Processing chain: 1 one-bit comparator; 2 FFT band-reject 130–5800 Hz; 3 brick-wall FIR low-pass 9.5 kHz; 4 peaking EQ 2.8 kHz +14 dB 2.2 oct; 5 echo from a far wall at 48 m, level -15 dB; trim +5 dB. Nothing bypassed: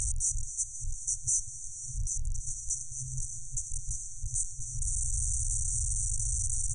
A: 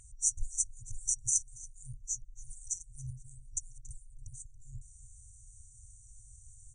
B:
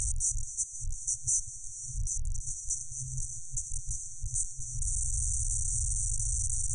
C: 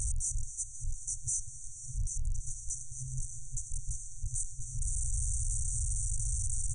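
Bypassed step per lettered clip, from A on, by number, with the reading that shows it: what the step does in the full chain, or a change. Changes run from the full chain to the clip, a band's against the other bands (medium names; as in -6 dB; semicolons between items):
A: 1, crest factor change +11.5 dB; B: 5, echo-to-direct -16.0 dB to none; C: 4, crest factor change -3.5 dB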